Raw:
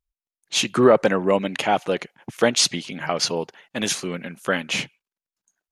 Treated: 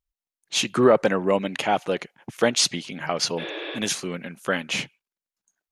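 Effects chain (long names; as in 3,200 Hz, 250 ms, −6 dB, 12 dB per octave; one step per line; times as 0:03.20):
healed spectral selection 0:03.41–0:03.76, 320–5,600 Hz after
level −2 dB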